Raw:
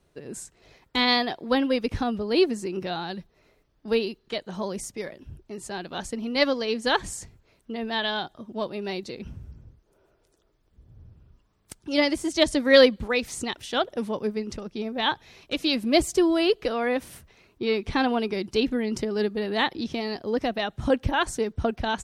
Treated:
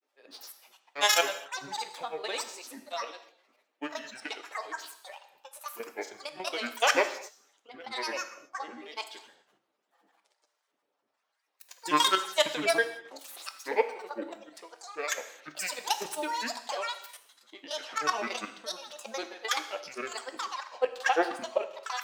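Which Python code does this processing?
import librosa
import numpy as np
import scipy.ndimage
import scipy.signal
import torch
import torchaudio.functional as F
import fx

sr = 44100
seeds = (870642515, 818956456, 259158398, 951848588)

y = fx.tracing_dist(x, sr, depth_ms=0.078)
y = scipy.signal.sosfilt(scipy.signal.butter(4, 630.0, 'highpass', fs=sr, output='sos'), y)
y = fx.high_shelf(y, sr, hz=3600.0, db=-3.5)
y = fx.notch(y, sr, hz=1600.0, q=8.3)
y = y + 0.45 * np.pad(y, (int(7.4 * sr / 1000.0), 0))[:len(y)]
y = fx.level_steps(y, sr, step_db=12)
y = fx.granulator(y, sr, seeds[0], grain_ms=100.0, per_s=20.0, spray_ms=100.0, spread_st=12)
y = fx.rev_gated(y, sr, seeds[1], gate_ms=290, shape='falling', drr_db=8.0)
y = F.gain(torch.from_numpy(y), 3.5).numpy()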